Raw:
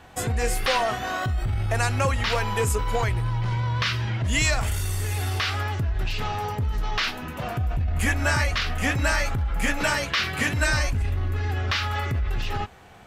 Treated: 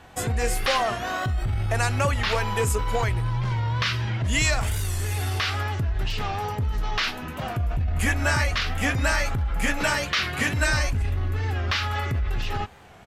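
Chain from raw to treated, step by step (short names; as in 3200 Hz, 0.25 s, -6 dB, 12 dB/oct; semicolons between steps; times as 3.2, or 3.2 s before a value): downsampling 32000 Hz; record warp 45 rpm, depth 100 cents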